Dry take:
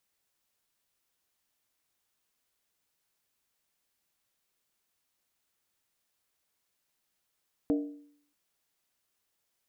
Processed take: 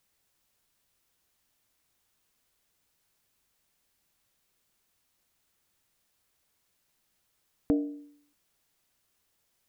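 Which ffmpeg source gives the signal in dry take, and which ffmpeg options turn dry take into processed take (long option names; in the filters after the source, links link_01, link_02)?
-f lavfi -i "aevalsrc='0.0794*pow(10,-3*t/0.63)*sin(2*PI*291*t)+0.0335*pow(10,-3*t/0.499)*sin(2*PI*463.9*t)+0.0141*pow(10,-3*t/0.431)*sin(2*PI*621.6*t)+0.00596*pow(10,-3*t/0.416)*sin(2*PI*668.1*t)+0.00251*pow(10,-3*t/0.387)*sin(2*PI*772*t)':duration=0.63:sample_rate=44100"
-filter_complex "[0:a]lowshelf=frequency=180:gain=7,asplit=2[link_01][link_02];[link_02]acompressor=threshold=-37dB:ratio=6,volume=-3dB[link_03];[link_01][link_03]amix=inputs=2:normalize=0"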